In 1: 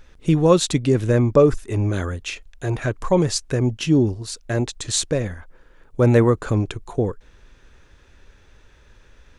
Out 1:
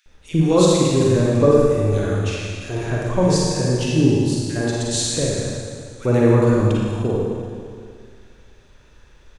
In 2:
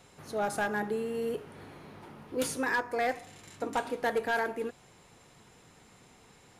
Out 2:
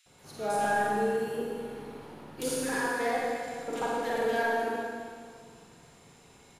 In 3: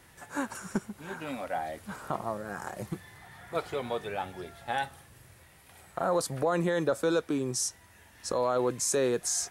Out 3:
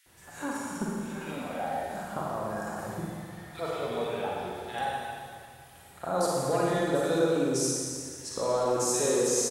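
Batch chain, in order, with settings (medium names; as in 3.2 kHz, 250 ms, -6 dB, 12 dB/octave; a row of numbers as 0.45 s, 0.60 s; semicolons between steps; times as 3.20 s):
bands offset in time highs, lows 60 ms, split 1.8 kHz; Schroeder reverb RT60 2.1 s, DRR -4 dB; trim -3 dB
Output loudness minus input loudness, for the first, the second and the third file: +2.0 LU, +2.0 LU, +1.5 LU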